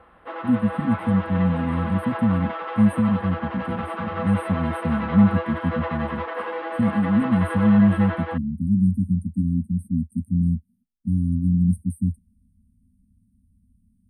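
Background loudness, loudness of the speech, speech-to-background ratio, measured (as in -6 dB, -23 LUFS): -30.5 LUFS, -22.5 LUFS, 8.0 dB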